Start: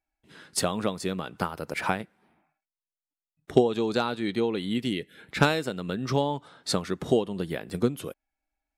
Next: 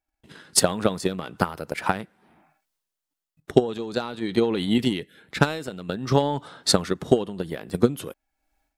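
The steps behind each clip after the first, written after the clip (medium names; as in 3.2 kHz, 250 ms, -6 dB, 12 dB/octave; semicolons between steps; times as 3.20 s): peaking EQ 2.3 kHz -3 dB 0.3 oct; transient shaper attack +11 dB, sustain +7 dB; level rider gain up to 10 dB; trim -1 dB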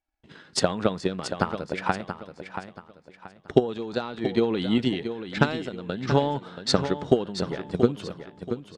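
Bessel low-pass 4.9 kHz, order 4; on a send: feedback delay 680 ms, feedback 32%, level -9.5 dB; on the sum: trim -1.5 dB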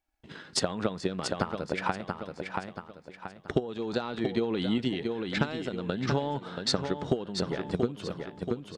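compression 3:1, threshold -30 dBFS, peak gain reduction 14 dB; trim +3 dB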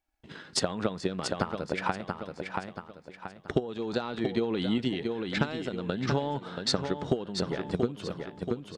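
no audible change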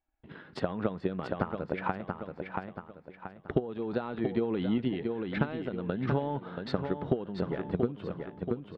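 distance through air 480 m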